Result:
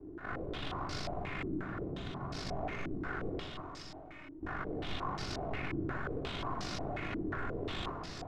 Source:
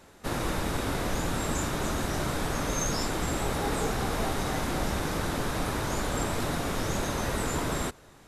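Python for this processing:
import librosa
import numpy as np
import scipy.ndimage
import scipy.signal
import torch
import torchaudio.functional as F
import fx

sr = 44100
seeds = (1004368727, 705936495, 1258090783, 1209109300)

p1 = fx.peak_eq(x, sr, hz=180.0, db=10.0, octaves=2.0, at=(1.46, 2.34))
p2 = fx.over_compress(p1, sr, threshold_db=-31.0, ratio=-0.5)
p3 = fx.tube_stage(p2, sr, drive_db=44.0, bias=0.55)
p4 = fx.stiff_resonator(p3, sr, f0_hz=300.0, decay_s=0.3, stiffness=0.002, at=(3.39, 4.41), fade=0.02)
p5 = p4 * np.sin(2.0 * np.pi * 25.0 * np.arange(len(p4)) / sr)
p6 = p5 + fx.echo_split(p5, sr, split_hz=850.0, low_ms=309, high_ms=425, feedback_pct=52, wet_db=-7.0, dry=0)
p7 = fx.room_shoebox(p6, sr, seeds[0], volume_m3=2400.0, walls='furnished', distance_m=3.3)
p8 = fx.filter_held_lowpass(p7, sr, hz=5.6, low_hz=330.0, high_hz=5000.0)
y = p8 * 10.0 ** (2.0 / 20.0)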